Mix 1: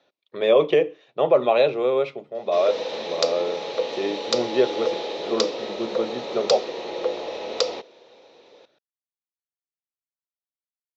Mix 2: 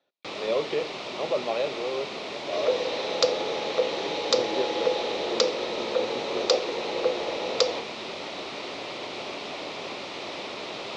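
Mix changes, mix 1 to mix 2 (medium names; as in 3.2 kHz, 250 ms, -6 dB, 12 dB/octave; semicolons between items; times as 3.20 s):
speech -10.0 dB; first sound: unmuted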